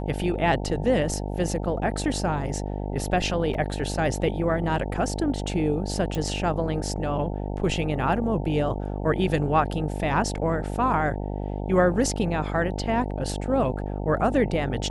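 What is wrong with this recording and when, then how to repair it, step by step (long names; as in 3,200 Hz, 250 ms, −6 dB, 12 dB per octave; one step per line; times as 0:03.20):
mains buzz 50 Hz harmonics 18 −30 dBFS
0:03.54: drop-out 3 ms
0:06.15: click −17 dBFS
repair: click removal
hum removal 50 Hz, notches 18
repair the gap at 0:03.54, 3 ms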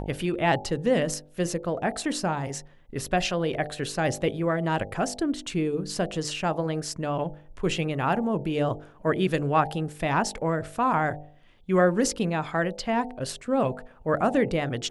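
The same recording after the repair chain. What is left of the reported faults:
none of them is left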